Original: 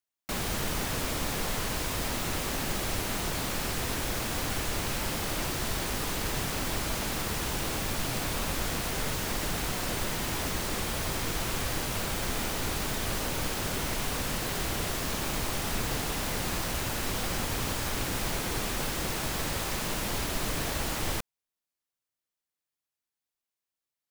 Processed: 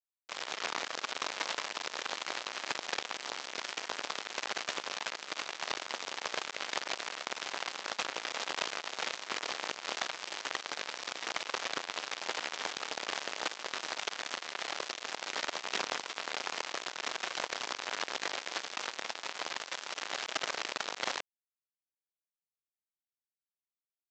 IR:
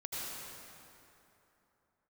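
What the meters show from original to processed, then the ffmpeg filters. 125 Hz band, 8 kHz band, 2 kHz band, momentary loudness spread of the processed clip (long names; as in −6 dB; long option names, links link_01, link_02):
−30.0 dB, −9.0 dB, −2.0 dB, 3 LU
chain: -af "aresample=16000,acrusher=bits=3:mix=0:aa=0.5,aresample=44100,highpass=530,lowpass=5400,volume=3.5dB"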